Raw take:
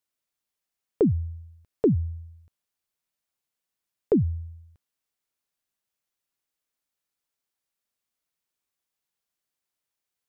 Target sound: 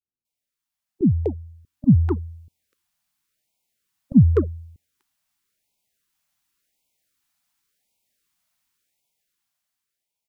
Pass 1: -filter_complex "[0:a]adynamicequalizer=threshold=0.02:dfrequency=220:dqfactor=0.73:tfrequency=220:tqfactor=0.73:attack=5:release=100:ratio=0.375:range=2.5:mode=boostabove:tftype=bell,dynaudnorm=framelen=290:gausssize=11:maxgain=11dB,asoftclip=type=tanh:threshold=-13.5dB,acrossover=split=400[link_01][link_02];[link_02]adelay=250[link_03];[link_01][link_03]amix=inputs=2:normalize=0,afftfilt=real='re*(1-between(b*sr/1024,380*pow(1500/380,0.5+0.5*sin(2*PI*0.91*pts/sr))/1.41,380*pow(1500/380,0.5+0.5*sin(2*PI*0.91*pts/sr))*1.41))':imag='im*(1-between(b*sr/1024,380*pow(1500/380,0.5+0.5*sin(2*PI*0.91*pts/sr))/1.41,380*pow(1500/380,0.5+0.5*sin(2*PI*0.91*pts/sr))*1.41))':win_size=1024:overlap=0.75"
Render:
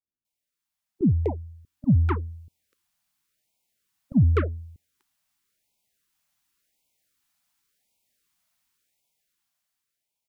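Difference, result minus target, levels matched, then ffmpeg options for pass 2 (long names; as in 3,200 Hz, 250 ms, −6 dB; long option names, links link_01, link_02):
soft clipping: distortion +14 dB
-filter_complex "[0:a]adynamicequalizer=threshold=0.02:dfrequency=220:dqfactor=0.73:tfrequency=220:tqfactor=0.73:attack=5:release=100:ratio=0.375:range=2.5:mode=boostabove:tftype=bell,dynaudnorm=framelen=290:gausssize=11:maxgain=11dB,asoftclip=type=tanh:threshold=-2.5dB,acrossover=split=400[link_01][link_02];[link_02]adelay=250[link_03];[link_01][link_03]amix=inputs=2:normalize=0,afftfilt=real='re*(1-between(b*sr/1024,380*pow(1500/380,0.5+0.5*sin(2*PI*0.91*pts/sr))/1.41,380*pow(1500/380,0.5+0.5*sin(2*PI*0.91*pts/sr))*1.41))':imag='im*(1-between(b*sr/1024,380*pow(1500/380,0.5+0.5*sin(2*PI*0.91*pts/sr))/1.41,380*pow(1500/380,0.5+0.5*sin(2*PI*0.91*pts/sr))*1.41))':win_size=1024:overlap=0.75"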